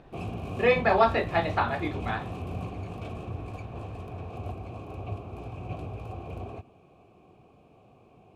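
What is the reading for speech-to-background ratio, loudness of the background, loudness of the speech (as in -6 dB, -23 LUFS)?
11.5 dB, -37.5 LUFS, -26.0 LUFS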